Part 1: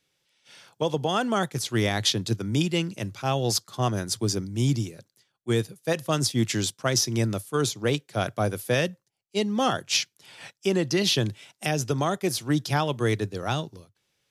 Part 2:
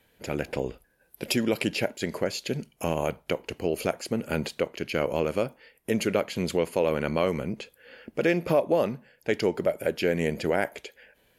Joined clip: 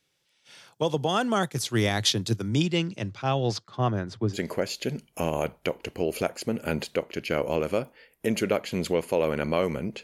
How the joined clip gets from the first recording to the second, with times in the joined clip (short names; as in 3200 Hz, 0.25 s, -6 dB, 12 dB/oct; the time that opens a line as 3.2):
part 1
2.48–4.37 LPF 7600 Hz -> 1700 Hz
4.34 switch to part 2 from 1.98 s, crossfade 0.06 s